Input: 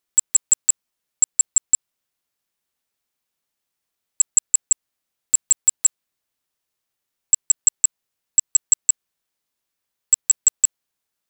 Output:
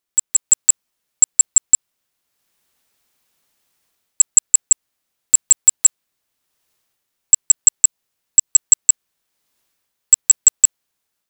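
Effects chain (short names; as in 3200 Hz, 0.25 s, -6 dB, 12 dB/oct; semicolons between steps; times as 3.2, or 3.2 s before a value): AGC gain up to 14 dB; 7.85–8.47 dynamic EQ 1500 Hz, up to -5 dB, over -35 dBFS, Q 0.9; gain -1 dB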